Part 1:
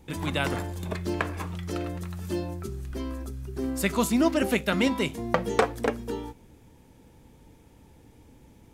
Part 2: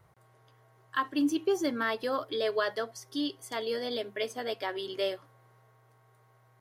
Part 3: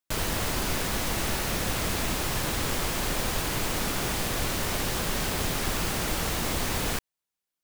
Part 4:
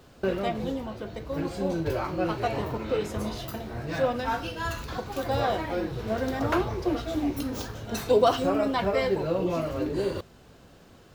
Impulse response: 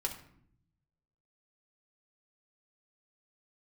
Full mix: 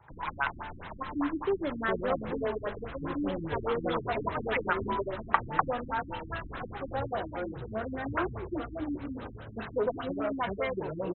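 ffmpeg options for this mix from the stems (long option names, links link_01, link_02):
-filter_complex "[0:a]lowshelf=frequency=620:width_type=q:width=3:gain=-13.5,volume=-7dB[link_01];[1:a]equalizer=frequency=2000:width_type=o:width=0.77:gain=-7.5,alimiter=limit=-23dB:level=0:latency=1:release=380,volume=-2dB,asplit=2[link_02][link_03];[link_03]volume=-11dB[link_04];[2:a]volume=-16.5dB[link_05];[3:a]asoftclip=type=tanh:threshold=-16dB,adelay=1650,volume=-6.5dB[link_06];[4:a]atrim=start_sample=2205[link_07];[link_04][link_07]afir=irnorm=-1:irlink=0[link_08];[link_01][link_02][link_05][link_06][link_08]amix=inputs=5:normalize=0,equalizer=frequency=1500:width=0.84:gain=6.5,afftfilt=real='re*lt(b*sr/1024,320*pow(4200/320,0.5+0.5*sin(2*PI*4.9*pts/sr)))':imag='im*lt(b*sr/1024,320*pow(4200/320,0.5+0.5*sin(2*PI*4.9*pts/sr)))':win_size=1024:overlap=0.75"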